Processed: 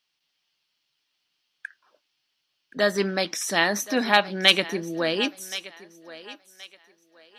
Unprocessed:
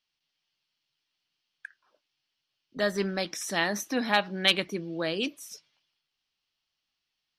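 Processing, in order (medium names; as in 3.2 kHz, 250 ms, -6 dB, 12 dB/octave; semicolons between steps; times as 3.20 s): bass shelf 120 Hz -11.5 dB; on a send: thinning echo 1074 ms, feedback 29%, high-pass 380 Hz, level -16 dB; on the sum: trim +6 dB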